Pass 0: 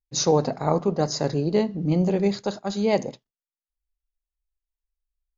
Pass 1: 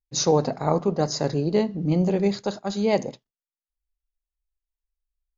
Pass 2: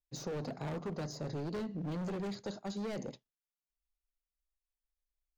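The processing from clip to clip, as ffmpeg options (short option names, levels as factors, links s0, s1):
-af anull
-filter_complex "[0:a]asoftclip=type=hard:threshold=0.0631,acrossover=split=490|1100[s0][s1][s2];[s0]acompressor=threshold=0.0316:ratio=4[s3];[s1]acompressor=threshold=0.00794:ratio=4[s4];[s2]acompressor=threshold=0.00794:ratio=4[s5];[s3][s4][s5]amix=inputs=3:normalize=0,volume=0.447"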